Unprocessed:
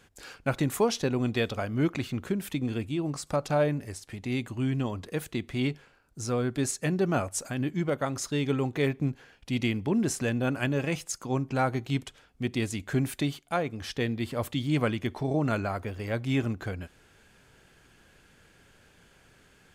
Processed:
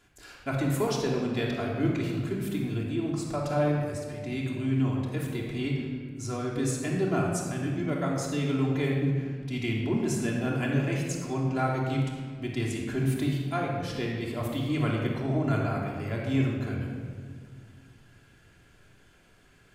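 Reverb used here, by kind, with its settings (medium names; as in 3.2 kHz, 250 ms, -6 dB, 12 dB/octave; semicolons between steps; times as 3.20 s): simulated room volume 2600 m³, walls mixed, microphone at 3.1 m; trim -6 dB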